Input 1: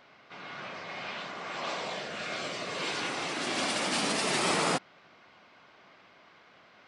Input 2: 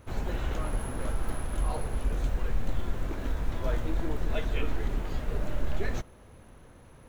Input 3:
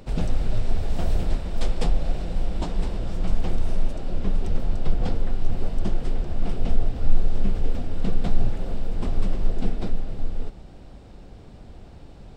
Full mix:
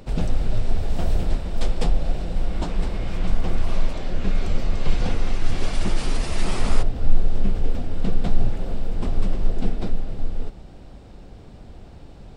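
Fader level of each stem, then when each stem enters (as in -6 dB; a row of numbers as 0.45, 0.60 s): -5.0 dB, off, +1.5 dB; 2.05 s, off, 0.00 s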